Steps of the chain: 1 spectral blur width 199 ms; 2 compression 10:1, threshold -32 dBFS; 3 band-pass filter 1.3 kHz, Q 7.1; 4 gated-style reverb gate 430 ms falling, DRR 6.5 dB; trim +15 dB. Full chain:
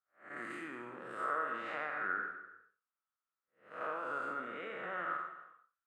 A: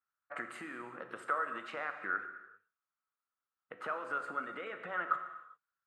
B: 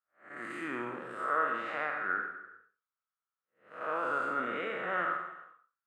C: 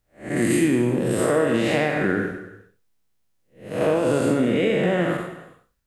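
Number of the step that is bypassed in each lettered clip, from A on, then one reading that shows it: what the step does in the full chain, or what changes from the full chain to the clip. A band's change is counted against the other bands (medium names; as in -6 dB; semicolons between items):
1, 4 kHz band +2.0 dB; 2, mean gain reduction 4.5 dB; 3, 1 kHz band -16.5 dB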